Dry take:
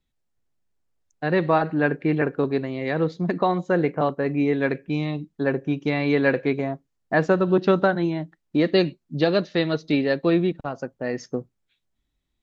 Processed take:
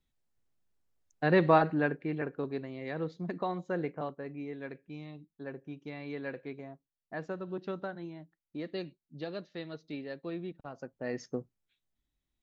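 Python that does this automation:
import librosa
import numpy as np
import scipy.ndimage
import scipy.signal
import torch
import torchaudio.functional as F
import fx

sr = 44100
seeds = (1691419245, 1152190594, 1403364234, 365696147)

y = fx.gain(x, sr, db=fx.line((1.59, -3.0), (2.06, -12.5), (3.84, -12.5), (4.43, -19.0), (10.37, -19.0), (11.13, -8.0)))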